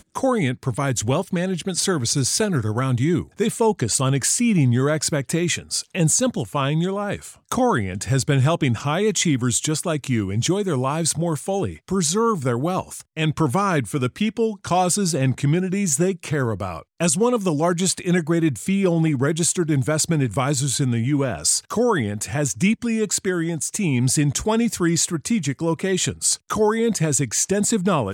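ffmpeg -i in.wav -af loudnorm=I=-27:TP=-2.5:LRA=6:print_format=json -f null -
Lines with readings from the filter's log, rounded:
"input_i" : "-21.0",
"input_tp" : "-6.1",
"input_lra" : "1.7",
"input_thresh" : "-31.0",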